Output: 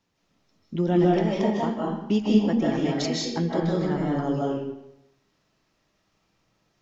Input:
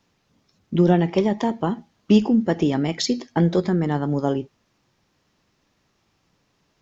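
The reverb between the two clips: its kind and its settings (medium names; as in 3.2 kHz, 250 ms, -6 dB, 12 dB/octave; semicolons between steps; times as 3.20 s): algorithmic reverb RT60 0.83 s, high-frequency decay 0.8×, pre-delay 115 ms, DRR -4.5 dB; trim -8 dB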